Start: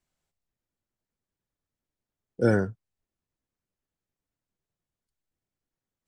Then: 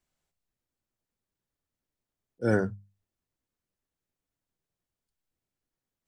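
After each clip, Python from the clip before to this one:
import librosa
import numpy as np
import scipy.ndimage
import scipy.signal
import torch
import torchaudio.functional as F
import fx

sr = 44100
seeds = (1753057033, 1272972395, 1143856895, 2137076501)

y = fx.auto_swell(x, sr, attack_ms=150.0)
y = fx.hum_notches(y, sr, base_hz=50, count=4)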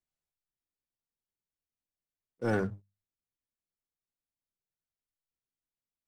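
y = fx.leveller(x, sr, passes=2)
y = y * 10.0 ** (-9.0 / 20.0)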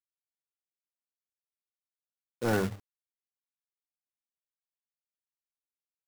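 y = fx.quant_companded(x, sr, bits=4)
y = y * 10.0 ** (1.5 / 20.0)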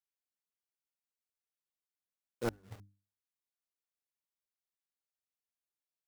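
y = fx.gate_flip(x, sr, shuts_db=-23.0, range_db=-36)
y = fx.hum_notches(y, sr, base_hz=50, count=6)
y = y * 10.0 ** (-3.5 / 20.0)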